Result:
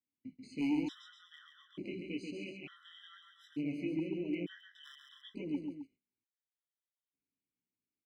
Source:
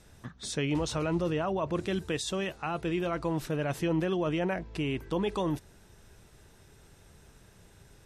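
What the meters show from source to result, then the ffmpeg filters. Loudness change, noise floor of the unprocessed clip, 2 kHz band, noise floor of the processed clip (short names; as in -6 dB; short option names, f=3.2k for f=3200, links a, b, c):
-8.0 dB, -58 dBFS, -11.5 dB, under -85 dBFS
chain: -filter_complex "[0:a]agate=range=-31dB:threshold=-45dB:ratio=16:detection=peak,adynamicequalizer=threshold=0.00355:dfrequency=1000:dqfactor=1.8:tfrequency=1000:tqfactor=1.8:attack=5:release=100:ratio=0.375:range=2.5:mode=cutabove:tftype=bell,flanger=delay=16.5:depth=4.9:speed=0.93,asplit=3[a][b][c];[a]bandpass=f=270:t=q:w=8,volume=0dB[d];[b]bandpass=f=2.29k:t=q:w=8,volume=-6dB[e];[c]bandpass=f=3.01k:t=q:w=8,volume=-9dB[f];[d][e][f]amix=inputs=3:normalize=0,volume=36dB,asoftclip=hard,volume=-36dB,asplit=2[g][h];[h]aecho=0:1:137|262.4:0.562|0.316[i];[g][i]amix=inputs=2:normalize=0,afftfilt=real='re*gt(sin(2*PI*0.56*pts/sr)*(1-2*mod(floor(b*sr/1024/1000),2)),0)':imag='im*gt(sin(2*PI*0.56*pts/sr)*(1-2*mod(floor(b*sr/1024/1000),2)),0)':win_size=1024:overlap=0.75,volume=7dB"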